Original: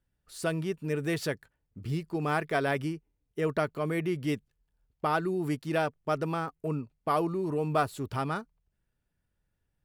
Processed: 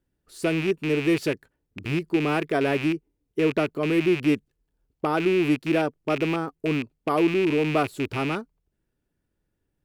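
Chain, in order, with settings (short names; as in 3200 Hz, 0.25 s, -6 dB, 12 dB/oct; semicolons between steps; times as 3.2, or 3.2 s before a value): rattling part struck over -37 dBFS, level -21 dBFS; bell 330 Hz +11 dB 1.2 oct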